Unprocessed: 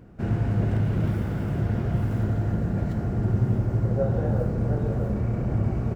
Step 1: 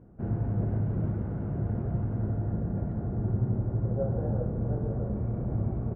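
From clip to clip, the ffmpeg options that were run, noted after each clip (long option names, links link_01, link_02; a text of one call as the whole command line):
ffmpeg -i in.wav -af "lowpass=1000,volume=-5dB" out.wav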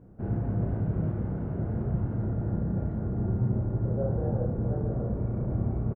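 ffmpeg -i in.wav -filter_complex "[0:a]asplit=2[link_01][link_02];[link_02]adelay=32,volume=-4dB[link_03];[link_01][link_03]amix=inputs=2:normalize=0" out.wav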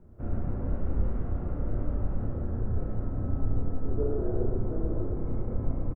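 ffmpeg -i in.wav -af "aecho=1:1:113:0.668,afreqshift=-110" out.wav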